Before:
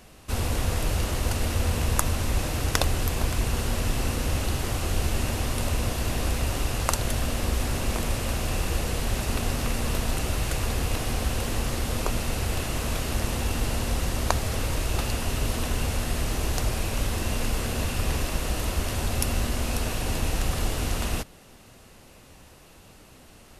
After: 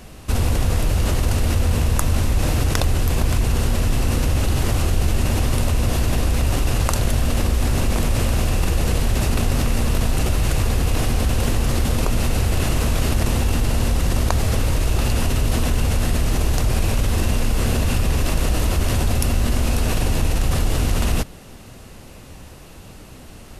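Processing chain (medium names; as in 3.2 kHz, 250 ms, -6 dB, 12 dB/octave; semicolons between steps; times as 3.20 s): in parallel at +1.5 dB: compressor with a negative ratio -29 dBFS, ratio -1; on the sum: bass shelf 300 Hz +6 dB; trim -2 dB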